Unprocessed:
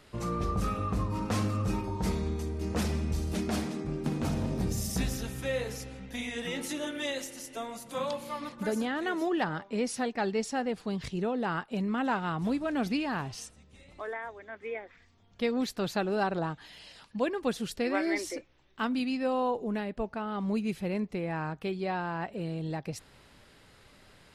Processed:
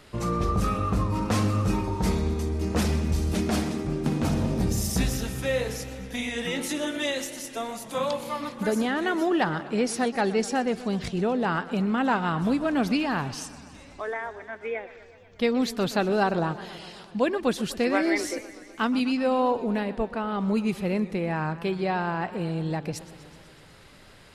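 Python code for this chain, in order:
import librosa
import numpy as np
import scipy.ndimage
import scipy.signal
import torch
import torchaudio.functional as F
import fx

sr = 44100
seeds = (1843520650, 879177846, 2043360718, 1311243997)

y = fx.echo_warbled(x, sr, ms=124, feedback_pct=72, rate_hz=2.8, cents=150, wet_db=-17.0)
y = y * librosa.db_to_amplitude(5.5)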